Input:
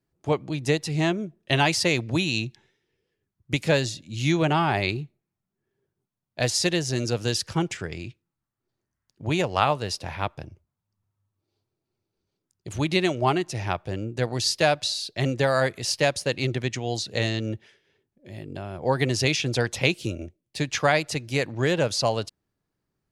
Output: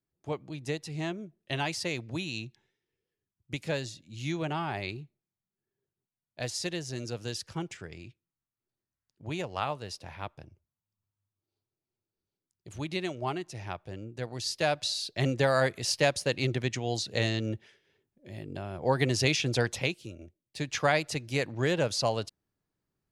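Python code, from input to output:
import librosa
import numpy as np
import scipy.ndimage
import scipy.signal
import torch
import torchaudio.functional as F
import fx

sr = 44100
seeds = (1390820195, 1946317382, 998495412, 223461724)

y = fx.gain(x, sr, db=fx.line((14.34, -10.5), (15.0, -3.0), (19.71, -3.0), (20.05, -14.0), (20.82, -4.5)))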